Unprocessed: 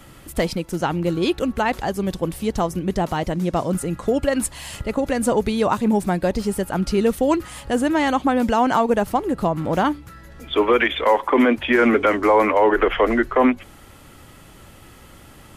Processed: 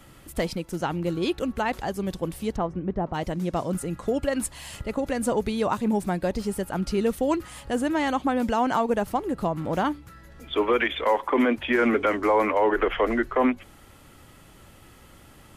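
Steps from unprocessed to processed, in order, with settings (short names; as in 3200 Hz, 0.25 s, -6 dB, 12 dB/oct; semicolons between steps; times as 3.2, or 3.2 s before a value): 2.55–3.13 LPF 2300 Hz -> 1000 Hz 12 dB/oct; gain -5.5 dB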